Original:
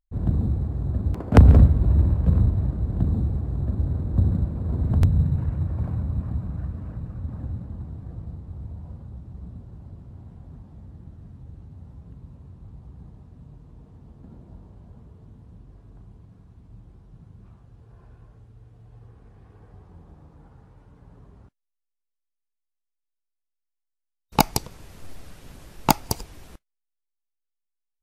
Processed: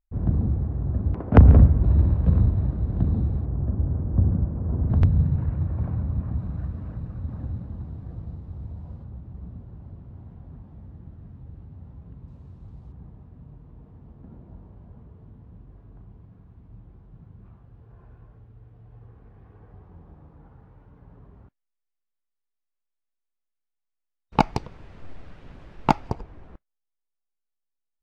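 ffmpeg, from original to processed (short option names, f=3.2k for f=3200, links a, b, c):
-af "asetnsamples=n=441:p=0,asendcmd='1.84 lowpass f 3900;3.45 lowpass f 1500;4.9 lowpass f 2900;6.39 lowpass f 4900;9.04 lowpass f 2900;12.28 lowpass f 6600;12.92 lowpass f 2500;26.1 lowpass f 1400',lowpass=2.2k"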